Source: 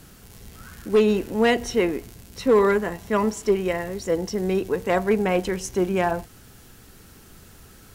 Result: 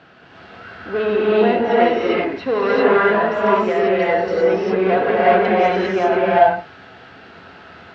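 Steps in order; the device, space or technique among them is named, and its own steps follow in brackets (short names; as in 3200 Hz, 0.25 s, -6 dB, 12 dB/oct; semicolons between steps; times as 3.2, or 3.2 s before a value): overdrive pedal into a guitar cabinet (overdrive pedal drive 16 dB, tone 1800 Hz, clips at -11 dBFS; speaker cabinet 100–4100 Hz, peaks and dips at 670 Hz +8 dB, 1500 Hz +5 dB, 2700 Hz +3 dB); 1.27–1.71 high shelf 2300 Hz -10 dB; non-linear reverb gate 0.42 s rising, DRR -7 dB; gain -4 dB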